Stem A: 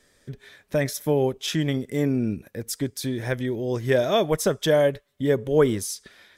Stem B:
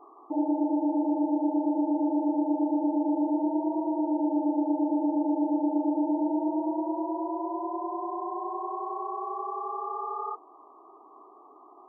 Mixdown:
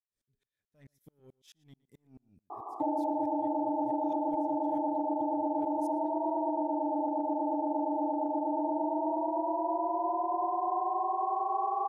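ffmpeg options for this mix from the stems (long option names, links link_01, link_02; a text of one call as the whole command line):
ffmpeg -i stem1.wav -i stem2.wav -filter_complex "[0:a]equalizer=frequency=1000:width=0.41:gain=-9.5,asoftclip=type=tanh:threshold=-22.5dB,aeval=exprs='val(0)*pow(10,-38*if(lt(mod(-4.6*n/s,1),2*abs(-4.6)/1000),1-mod(-4.6*n/s,1)/(2*abs(-4.6)/1000),(mod(-4.6*n/s,1)-2*abs(-4.6)/1000)/(1-2*abs(-4.6)/1000))/20)':channel_layout=same,volume=-20dB,asplit=2[link_01][link_02];[link_02]volume=-22dB[link_03];[1:a]equalizer=frequency=770:width=1.2:gain=14,acompressor=threshold=-27dB:ratio=6,alimiter=limit=-23dB:level=0:latency=1:release=89,adelay=2500,volume=0.5dB[link_04];[link_03]aecho=0:1:116:1[link_05];[link_01][link_04][link_05]amix=inputs=3:normalize=0" out.wav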